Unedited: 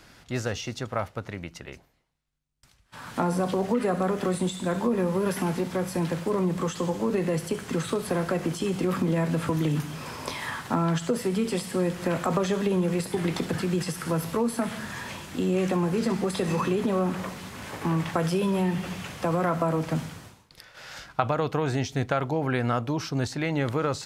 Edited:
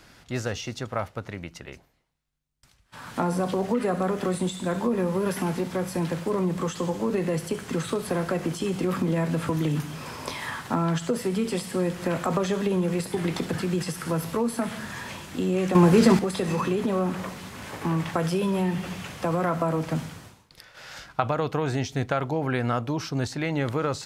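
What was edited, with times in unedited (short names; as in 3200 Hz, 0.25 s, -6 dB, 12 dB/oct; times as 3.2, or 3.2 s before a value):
15.75–16.19 gain +9 dB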